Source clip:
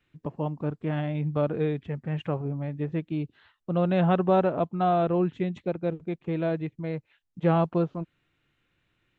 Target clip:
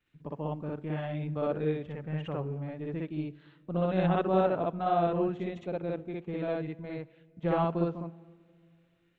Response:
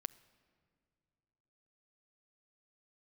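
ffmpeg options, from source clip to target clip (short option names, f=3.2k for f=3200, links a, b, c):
-filter_complex "[0:a]tremolo=f=150:d=0.261,asplit=2[a][b];[1:a]atrim=start_sample=2205,lowshelf=f=130:g=-12,adelay=59[c];[b][c]afir=irnorm=-1:irlink=0,volume=5.5dB[d];[a][d]amix=inputs=2:normalize=0,volume=-6.5dB"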